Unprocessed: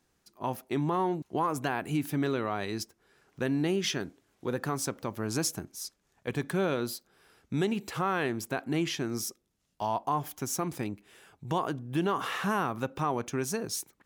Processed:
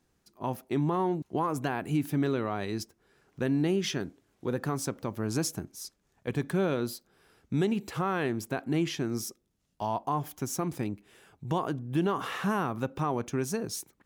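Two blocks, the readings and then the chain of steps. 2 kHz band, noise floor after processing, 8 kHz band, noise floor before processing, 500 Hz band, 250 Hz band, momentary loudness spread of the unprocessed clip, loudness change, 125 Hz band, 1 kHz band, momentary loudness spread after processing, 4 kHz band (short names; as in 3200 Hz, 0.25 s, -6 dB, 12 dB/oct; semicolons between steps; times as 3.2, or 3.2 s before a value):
-2.0 dB, -74 dBFS, -2.5 dB, -74 dBFS, +0.5 dB, +1.5 dB, 9 LU, +0.5 dB, +2.5 dB, -1.5 dB, 9 LU, -2.5 dB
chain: low shelf 500 Hz +5.5 dB; gain -2.5 dB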